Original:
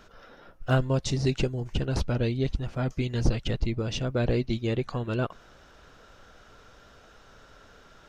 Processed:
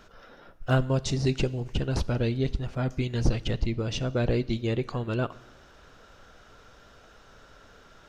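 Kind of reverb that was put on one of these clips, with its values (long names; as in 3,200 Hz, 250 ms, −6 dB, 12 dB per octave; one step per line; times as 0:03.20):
four-comb reverb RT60 1 s, combs from 27 ms, DRR 18.5 dB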